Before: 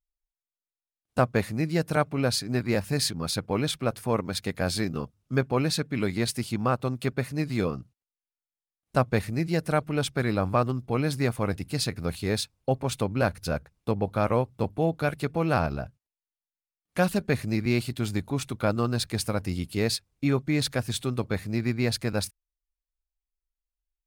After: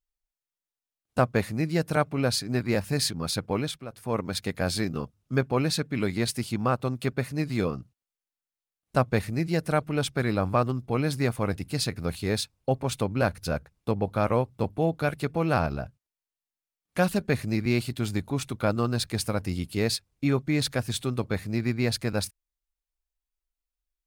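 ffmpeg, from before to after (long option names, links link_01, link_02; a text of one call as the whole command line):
ffmpeg -i in.wav -filter_complex "[0:a]asplit=3[link_01][link_02][link_03];[link_01]atrim=end=3.87,asetpts=PTS-STARTPTS,afade=type=out:start_time=3.52:duration=0.35:silence=0.223872[link_04];[link_02]atrim=start=3.87:end=3.89,asetpts=PTS-STARTPTS,volume=-13dB[link_05];[link_03]atrim=start=3.89,asetpts=PTS-STARTPTS,afade=type=in:duration=0.35:silence=0.223872[link_06];[link_04][link_05][link_06]concat=n=3:v=0:a=1" out.wav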